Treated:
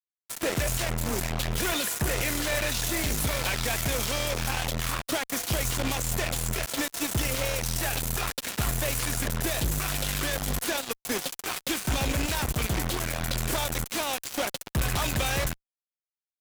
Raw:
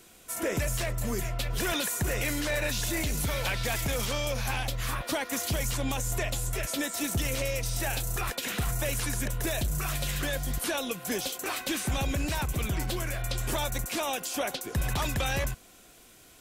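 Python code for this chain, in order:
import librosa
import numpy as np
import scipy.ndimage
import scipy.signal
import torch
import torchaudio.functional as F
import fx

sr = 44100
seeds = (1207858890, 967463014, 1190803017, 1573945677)

y = fx.cheby_harmonics(x, sr, harmonics=(3,), levels_db=(-9,), full_scale_db=-20.5)
y = fx.fuzz(y, sr, gain_db=43.0, gate_db=-49.0)
y = y * librosa.db_to_amplitude(-8.5)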